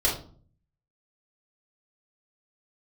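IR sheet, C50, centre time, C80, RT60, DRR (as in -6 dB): 6.5 dB, 29 ms, 12.0 dB, 0.45 s, -5.0 dB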